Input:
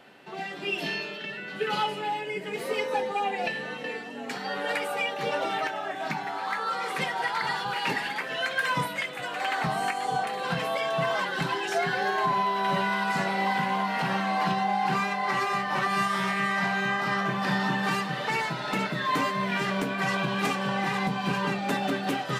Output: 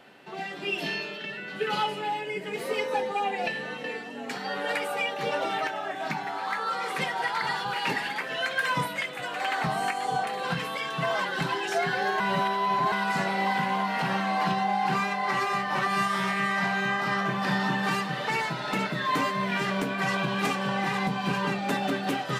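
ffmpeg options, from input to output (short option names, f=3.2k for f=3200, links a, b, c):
-filter_complex "[0:a]asettb=1/sr,asplit=3[a][b][c];[a]atrim=end=10.534[d];[b]atrim=start=10.53:end=11.03,asetpts=PTS-STARTPTS,afade=t=in:d=0.004:c=qsin,afade=t=out:st=0.496:d=0.004:c=qsin,equalizer=f=660:w=3.2:g=-13.5[e];[c]atrim=start=11.026[f];[d][e]acrossfade=d=0.004:c1=hsin:c2=qsin[g];[g][f]acrossfade=d=0.004:c1=qsin:c2=hsin,asplit=3[h][i][j];[h]atrim=end=12.202[k];[i]atrim=start=12.198:end=12.922,asetpts=PTS-STARTPTS,areverse[l];[j]atrim=start=12.918[m];[k][l]acrossfade=d=0.004:c1=hsin:c2=hsin[n];[n][m]acrossfade=d=0.004:c1=hsin:c2=hsin"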